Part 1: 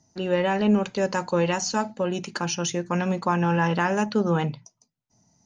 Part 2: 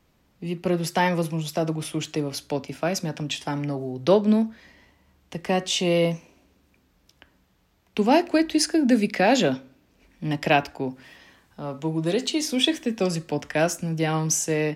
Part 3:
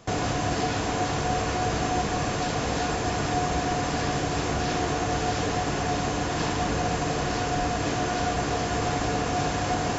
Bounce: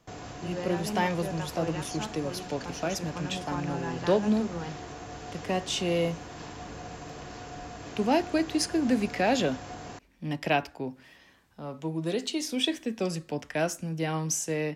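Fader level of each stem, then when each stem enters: -13.5 dB, -6.0 dB, -15.0 dB; 0.25 s, 0.00 s, 0.00 s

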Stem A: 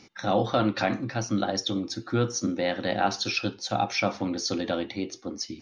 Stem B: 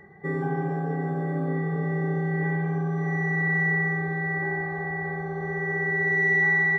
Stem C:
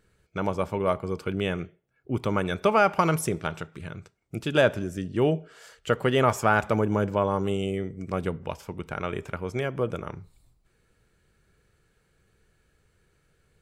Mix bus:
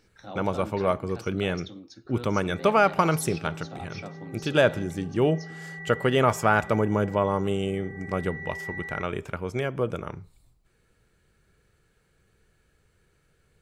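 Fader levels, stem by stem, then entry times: -15.0 dB, -15.5 dB, +0.5 dB; 0.00 s, 2.25 s, 0.00 s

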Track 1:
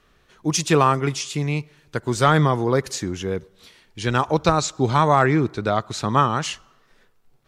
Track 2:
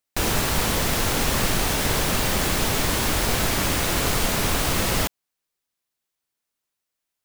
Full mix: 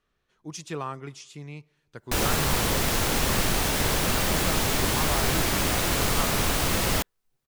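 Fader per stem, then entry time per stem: -16.5 dB, -2.0 dB; 0.00 s, 1.95 s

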